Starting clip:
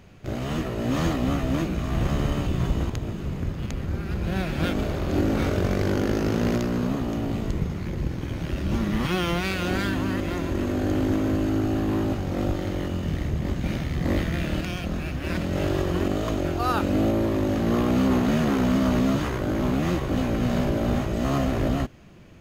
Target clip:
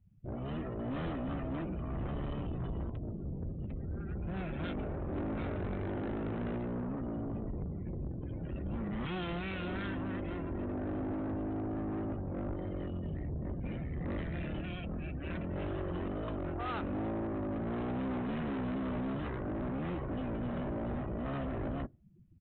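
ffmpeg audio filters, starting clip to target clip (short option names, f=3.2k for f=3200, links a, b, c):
-af "afftdn=nr=32:nf=-36,aresample=8000,asoftclip=type=tanh:threshold=-26dB,aresample=44100,volume=-7dB"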